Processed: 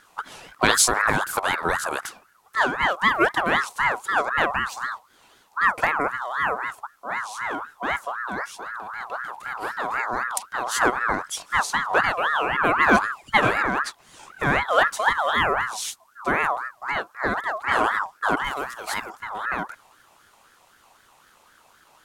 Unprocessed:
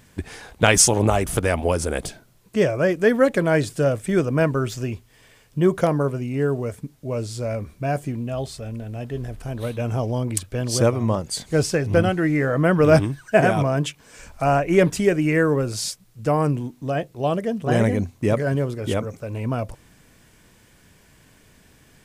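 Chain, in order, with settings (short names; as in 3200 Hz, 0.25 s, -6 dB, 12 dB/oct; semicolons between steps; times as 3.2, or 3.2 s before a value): 18.44–19.1 tilt +2.5 dB/oct; ring modulator with a swept carrier 1200 Hz, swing 30%, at 3.9 Hz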